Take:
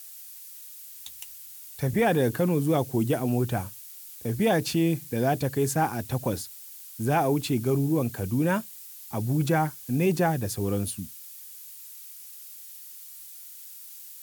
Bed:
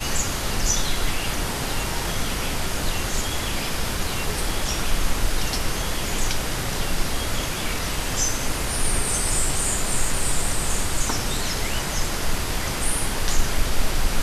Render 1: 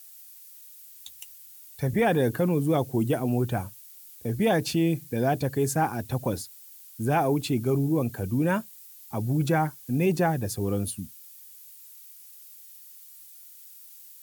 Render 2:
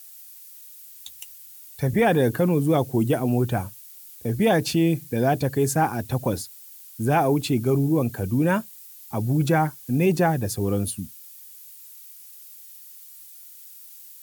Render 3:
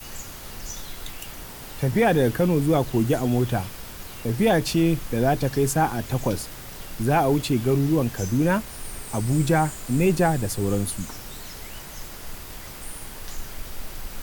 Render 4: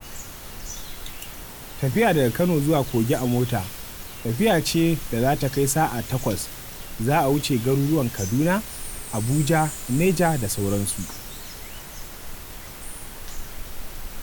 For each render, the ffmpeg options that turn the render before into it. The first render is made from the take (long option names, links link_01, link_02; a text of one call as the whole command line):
ffmpeg -i in.wav -af "afftdn=noise_reduction=6:noise_floor=-45" out.wav
ffmpeg -i in.wav -af "volume=3.5dB" out.wav
ffmpeg -i in.wav -i bed.wav -filter_complex "[1:a]volume=-14dB[link_01];[0:a][link_01]amix=inputs=2:normalize=0" out.wav
ffmpeg -i in.wav -af "bandreject=frequency=4800:width=25,adynamicequalizer=threshold=0.0112:dfrequency=2200:dqfactor=0.7:tfrequency=2200:tqfactor=0.7:attack=5:release=100:ratio=0.375:range=2:mode=boostabove:tftype=highshelf" out.wav